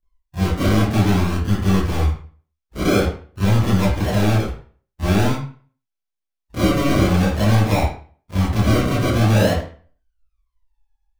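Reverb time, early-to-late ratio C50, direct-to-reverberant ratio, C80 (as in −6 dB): 0.45 s, 1.5 dB, −12.0 dB, 7.0 dB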